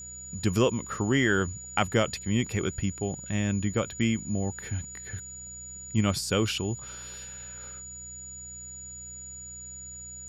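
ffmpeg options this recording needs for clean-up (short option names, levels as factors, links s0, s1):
-af "bandreject=f=62:t=h:w=4,bandreject=f=124:t=h:w=4,bandreject=f=186:t=h:w=4,bandreject=f=6900:w=30,agate=range=0.0891:threshold=0.02"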